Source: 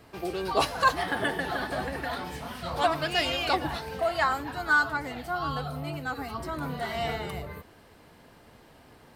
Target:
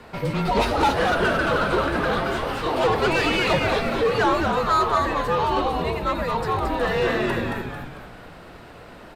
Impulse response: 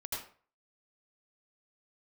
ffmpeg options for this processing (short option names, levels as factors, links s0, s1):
-filter_complex "[0:a]asplit=2[s0][s1];[s1]highpass=f=720:p=1,volume=14.1,asoftclip=type=tanh:threshold=0.335[s2];[s0][s2]amix=inputs=2:normalize=0,lowpass=f=1900:p=1,volume=0.501,asplit=7[s3][s4][s5][s6][s7][s8][s9];[s4]adelay=223,afreqshift=-120,volume=0.631[s10];[s5]adelay=446,afreqshift=-240,volume=0.292[s11];[s6]adelay=669,afreqshift=-360,volume=0.133[s12];[s7]adelay=892,afreqshift=-480,volume=0.0617[s13];[s8]adelay=1115,afreqshift=-600,volume=0.0282[s14];[s9]adelay=1338,afreqshift=-720,volume=0.013[s15];[s3][s10][s11][s12][s13][s14][s15]amix=inputs=7:normalize=0,afreqshift=-210,volume=0.794"